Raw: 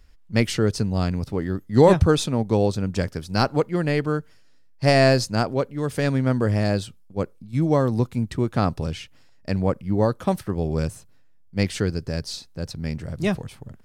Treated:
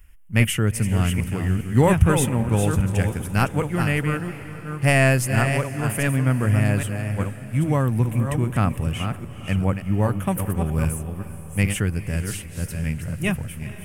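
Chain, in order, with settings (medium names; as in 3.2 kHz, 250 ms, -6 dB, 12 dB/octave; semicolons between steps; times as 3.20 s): chunks repeated in reverse 402 ms, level -7 dB; FFT filter 120 Hz 0 dB, 450 Hz -10 dB, 710 Hz -7 dB, 1.4 kHz -2 dB, 2.9 kHz +3 dB, 4.2 kHz -20 dB, 10 kHz +10 dB; echo that smears into a reverb 452 ms, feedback 57%, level -15 dB; trim +3.5 dB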